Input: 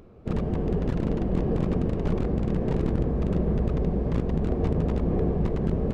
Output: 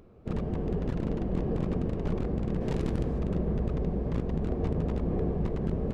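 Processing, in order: 2.60–3.18 s: treble shelf 2.6 kHz -> 3 kHz +11 dB; trim -4.5 dB

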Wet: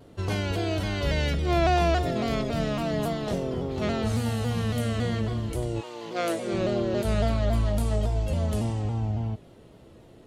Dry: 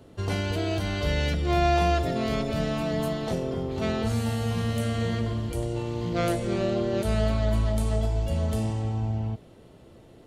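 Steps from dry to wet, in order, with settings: 5.80–6.52 s: high-pass 700 Hz -> 220 Hz 12 dB/octave; vibrato with a chosen wave saw down 3.6 Hz, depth 100 cents

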